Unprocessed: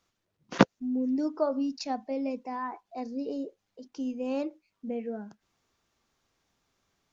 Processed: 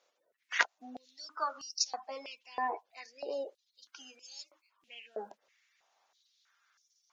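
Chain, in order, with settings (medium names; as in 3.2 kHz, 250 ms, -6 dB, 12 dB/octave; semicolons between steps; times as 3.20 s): coarse spectral quantiser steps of 30 dB; step-sequenced high-pass 3.1 Hz 530–5500 Hz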